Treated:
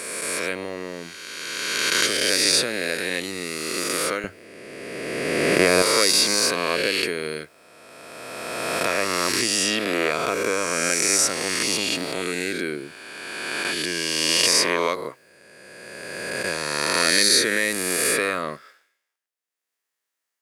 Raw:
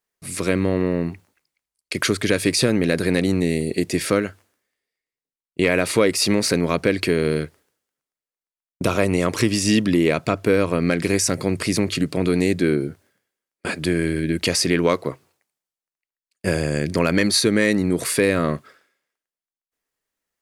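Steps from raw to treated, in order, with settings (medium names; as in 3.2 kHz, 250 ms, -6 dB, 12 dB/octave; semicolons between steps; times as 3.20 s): reverse spectral sustain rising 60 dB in 2.43 s; high-pass 1.2 kHz 6 dB/octave, from 4.24 s 160 Hz, from 5.82 s 940 Hz; trim -2 dB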